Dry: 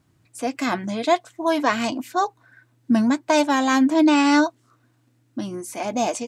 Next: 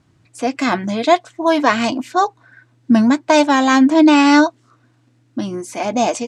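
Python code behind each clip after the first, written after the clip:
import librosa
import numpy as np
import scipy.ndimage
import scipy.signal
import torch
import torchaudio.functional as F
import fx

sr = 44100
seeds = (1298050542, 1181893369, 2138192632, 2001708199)

y = scipy.signal.sosfilt(scipy.signal.butter(2, 7300.0, 'lowpass', fs=sr, output='sos'), x)
y = y * 10.0 ** (6.0 / 20.0)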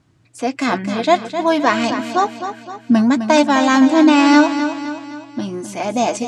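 y = fx.echo_feedback(x, sr, ms=258, feedback_pct=49, wet_db=-9.5)
y = y * 10.0 ** (-1.0 / 20.0)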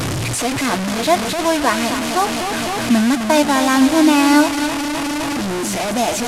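y = fx.delta_mod(x, sr, bps=64000, step_db=-13.5)
y = y * 10.0 ** (-1.5 / 20.0)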